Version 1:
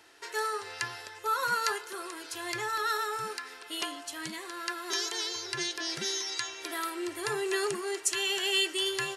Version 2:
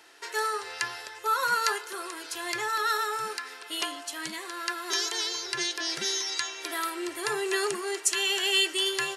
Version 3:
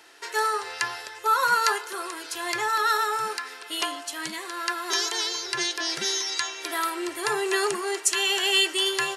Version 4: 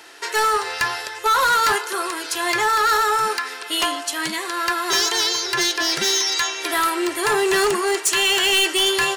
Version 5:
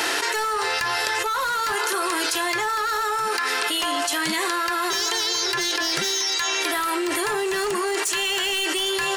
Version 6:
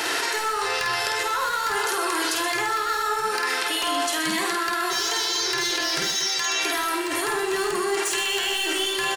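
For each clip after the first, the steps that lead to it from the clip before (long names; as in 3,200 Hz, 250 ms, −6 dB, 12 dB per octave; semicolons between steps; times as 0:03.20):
high-pass filter 320 Hz 6 dB per octave; level +3.5 dB
dynamic equaliser 900 Hz, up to +4 dB, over −41 dBFS, Q 1.3; level +2.5 dB
hard clipping −23 dBFS, distortion −9 dB; level +8.5 dB
envelope flattener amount 100%; level −8.5 dB
reverse bouncing-ball delay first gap 50 ms, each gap 1.5×, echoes 5; level −3 dB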